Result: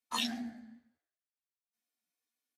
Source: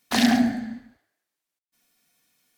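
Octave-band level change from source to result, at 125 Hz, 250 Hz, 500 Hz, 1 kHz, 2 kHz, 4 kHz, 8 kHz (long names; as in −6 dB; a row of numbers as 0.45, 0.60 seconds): −22.0, −20.0, −21.0, −12.5, −15.5, −8.5, −11.0 decibels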